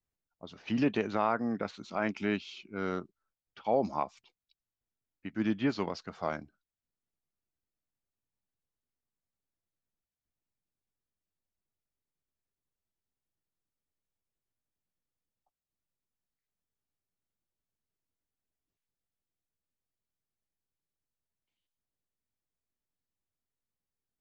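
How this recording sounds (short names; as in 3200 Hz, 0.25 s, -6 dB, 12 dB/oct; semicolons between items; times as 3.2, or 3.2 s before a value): noise floor -93 dBFS; spectral tilt -5.0 dB/oct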